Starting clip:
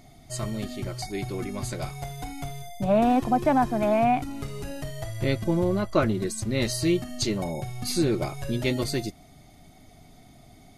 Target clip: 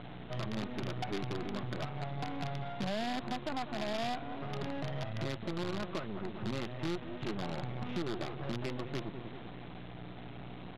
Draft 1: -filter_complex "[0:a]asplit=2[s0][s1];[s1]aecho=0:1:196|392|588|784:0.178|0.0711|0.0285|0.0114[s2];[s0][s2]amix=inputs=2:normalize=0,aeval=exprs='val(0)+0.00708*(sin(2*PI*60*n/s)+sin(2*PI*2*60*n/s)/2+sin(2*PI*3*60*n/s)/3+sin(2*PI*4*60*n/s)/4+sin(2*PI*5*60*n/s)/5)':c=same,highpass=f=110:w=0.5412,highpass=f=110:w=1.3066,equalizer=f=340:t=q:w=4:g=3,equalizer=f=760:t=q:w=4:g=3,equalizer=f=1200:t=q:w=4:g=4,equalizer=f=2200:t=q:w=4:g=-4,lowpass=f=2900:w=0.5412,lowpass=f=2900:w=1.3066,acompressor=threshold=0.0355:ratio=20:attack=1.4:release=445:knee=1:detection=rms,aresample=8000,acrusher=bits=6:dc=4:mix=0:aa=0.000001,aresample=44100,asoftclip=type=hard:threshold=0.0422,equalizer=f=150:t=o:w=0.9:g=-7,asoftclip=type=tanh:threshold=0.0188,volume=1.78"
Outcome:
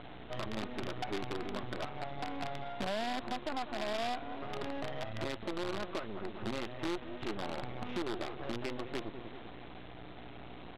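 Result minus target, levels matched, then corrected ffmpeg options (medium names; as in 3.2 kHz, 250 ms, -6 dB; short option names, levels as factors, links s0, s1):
125 Hz band -7.0 dB
-filter_complex "[0:a]asplit=2[s0][s1];[s1]aecho=0:1:196|392|588|784:0.178|0.0711|0.0285|0.0114[s2];[s0][s2]amix=inputs=2:normalize=0,aeval=exprs='val(0)+0.00708*(sin(2*PI*60*n/s)+sin(2*PI*2*60*n/s)/2+sin(2*PI*3*60*n/s)/3+sin(2*PI*4*60*n/s)/4+sin(2*PI*5*60*n/s)/5)':c=same,highpass=f=110:w=0.5412,highpass=f=110:w=1.3066,equalizer=f=340:t=q:w=4:g=3,equalizer=f=760:t=q:w=4:g=3,equalizer=f=1200:t=q:w=4:g=4,equalizer=f=2200:t=q:w=4:g=-4,lowpass=f=2900:w=0.5412,lowpass=f=2900:w=1.3066,acompressor=threshold=0.0355:ratio=20:attack=1.4:release=445:knee=1:detection=rms,aresample=8000,acrusher=bits=6:dc=4:mix=0:aa=0.000001,aresample=44100,asoftclip=type=hard:threshold=0.0422,equalizer=f=150:t=o:w=0.9:g=3,asoftclip=type=tanh:threshold=0.0188,volume=1.78"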